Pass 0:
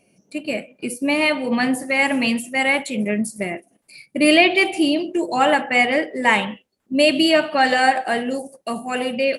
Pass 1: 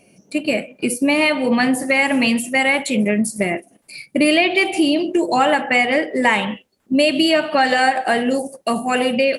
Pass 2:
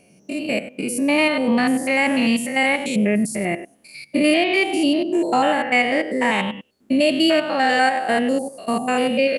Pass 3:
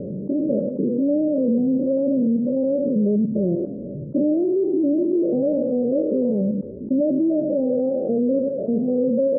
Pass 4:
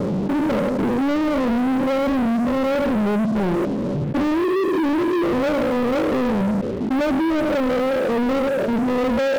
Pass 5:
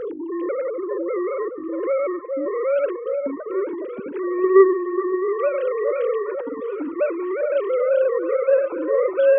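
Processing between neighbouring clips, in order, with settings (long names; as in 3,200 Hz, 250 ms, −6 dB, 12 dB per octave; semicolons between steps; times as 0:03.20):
downward compressor 3 to 1, threshold −22 dBFS, peak gain reduction 10.5 dB; level +7.5 dB
spectrum averaged block by block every 100 ms
Chebyshev low-pass with heavy ripple 590 Hz, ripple 3 dB; envelope flattener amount 70%
leveller curve on the samples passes 5; level −7.5 dB
three sine waves on the formant tracks; echo through a band-pass that steps 414 ms, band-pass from 690 Hz, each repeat 0.7 octaves, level −4 dB; level −2 dB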